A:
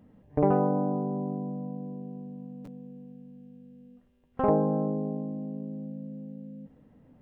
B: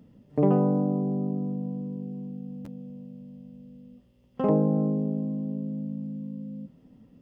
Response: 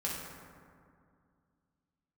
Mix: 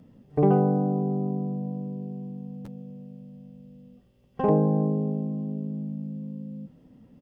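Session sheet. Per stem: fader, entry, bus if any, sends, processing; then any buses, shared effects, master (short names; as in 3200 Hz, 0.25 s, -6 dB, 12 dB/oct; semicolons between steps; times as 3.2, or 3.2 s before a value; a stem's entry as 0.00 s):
-5.0 dB, 0.00 s, no send, dry
+0.5 dB, 0.9 ms, no send, dry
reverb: off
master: dry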